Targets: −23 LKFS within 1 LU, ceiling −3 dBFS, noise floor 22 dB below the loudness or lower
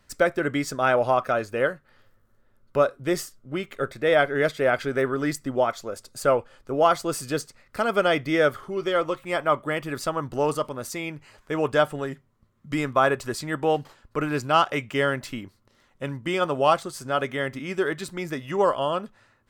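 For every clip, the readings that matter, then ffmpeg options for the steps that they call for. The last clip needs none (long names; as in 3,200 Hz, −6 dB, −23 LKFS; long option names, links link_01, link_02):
integrated loudness −25.0 LKFS; sample peak −5.5 dBFS; target loudness −23.0 LKFS
→ -af "volume=2dB"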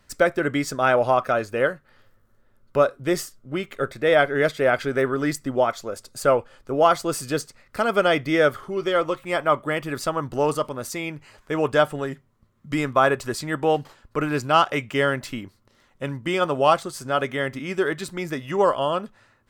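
integrated loudness −23.0 LKFS; sample peak −3.5 dBFS; background noise floor −62 dBFS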